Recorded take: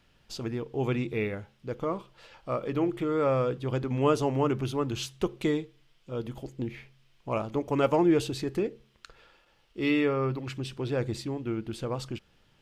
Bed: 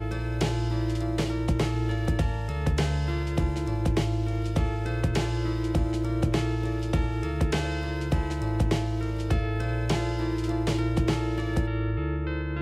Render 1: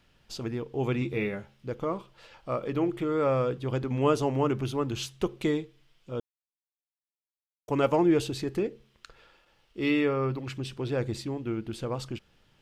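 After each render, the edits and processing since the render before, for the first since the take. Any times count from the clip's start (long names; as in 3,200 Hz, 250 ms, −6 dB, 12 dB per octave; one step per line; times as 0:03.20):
0:01.00–0:01.70: double-tracking delay 15 ms −6 dB
0:06.20–0:07.68: silence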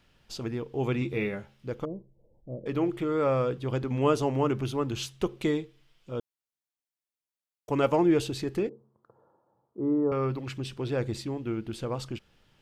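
0:01.85–0:02.66: Gaussian smoothing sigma 19 samples
0:08.69–0:10.12: elliptic band-pass filter 100–1,000 Hz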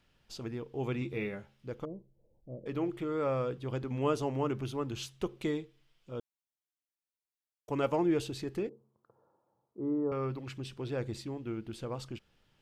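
level −6 dB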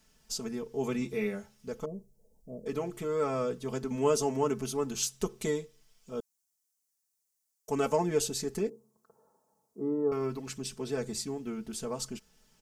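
high shelf with overshoot 4,600 Hz +11 dB, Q 1.5
comb filter 4.6 ms, depth 99%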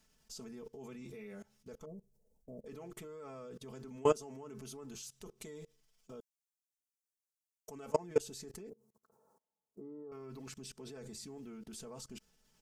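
output level in coarse steps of 24 dB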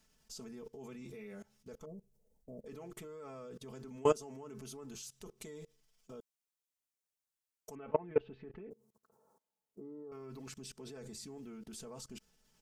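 0:07.75–0:08.71: Butterworth low-pass 2,800 Hz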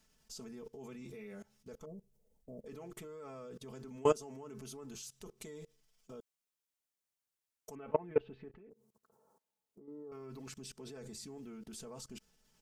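0:08.48–0:09.88: downward compressor 4 to 1, threshold −55 dBFS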